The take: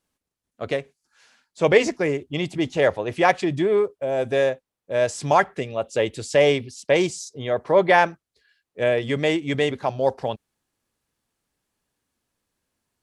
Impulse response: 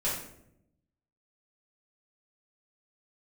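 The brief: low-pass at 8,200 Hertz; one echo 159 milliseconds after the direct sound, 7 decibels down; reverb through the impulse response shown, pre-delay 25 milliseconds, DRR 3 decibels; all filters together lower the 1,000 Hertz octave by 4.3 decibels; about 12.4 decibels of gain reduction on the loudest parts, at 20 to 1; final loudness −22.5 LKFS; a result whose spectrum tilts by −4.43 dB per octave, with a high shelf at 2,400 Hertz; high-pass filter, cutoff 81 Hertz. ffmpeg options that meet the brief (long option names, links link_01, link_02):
-filter_complex "[0:a]highpass=81,lowpass=8200,equalizer=frequency=1000:width_type=o:gain=-7,highshelf=frequency=2400:gain=5.5,acompressor=threshold=-22dB:ratio=20,aecho=1:1:159:0.447,asplit=2[link_01][link_02];[1:a]atrim=start_sample=2205,adelay=25[link_03];[link_02][link_03]afir=irnorm=-1:irlink=0,volume=-10.5dB[link_04];[link_01][link_04]amix=inputs=2:normalize=0,volume=3.5dB"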